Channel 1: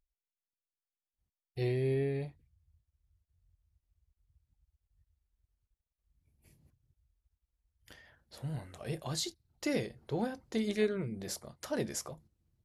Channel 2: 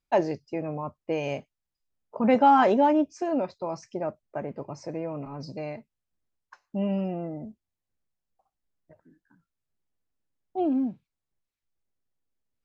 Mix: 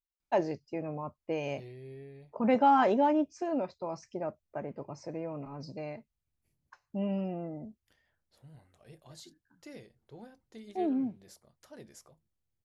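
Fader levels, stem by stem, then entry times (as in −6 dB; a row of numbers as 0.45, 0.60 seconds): −15.5, −5.0 decibels; 0.00, 0.20 seconds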